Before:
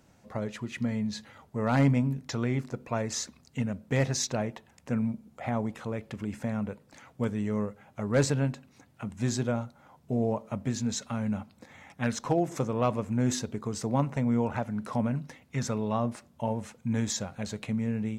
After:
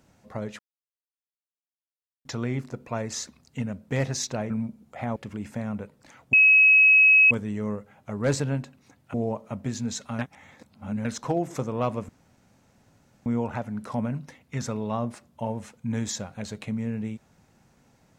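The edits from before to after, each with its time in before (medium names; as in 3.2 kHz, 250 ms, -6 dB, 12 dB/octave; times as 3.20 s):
0.59–2.25 s: mute
4.50–4.95 s: delete
5.61–6.04 s: delete
7.21 s: add tone 2.56 kHz -12.5 dBFS 0.98 s
9.04–10.15 s: delete
11.20–12.06 s: reverse
13.10–14.27 s: room tone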